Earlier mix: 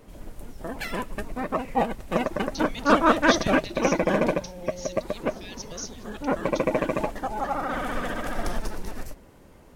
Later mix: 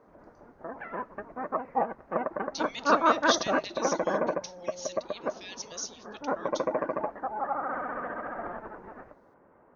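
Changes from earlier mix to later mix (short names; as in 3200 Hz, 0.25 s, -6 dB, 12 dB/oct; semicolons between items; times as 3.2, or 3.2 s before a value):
background: add inverse Chebyshev low-pass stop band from 5000 Hz, stop band 60 dB; master: add HPF 700 Hz 6 dB/oct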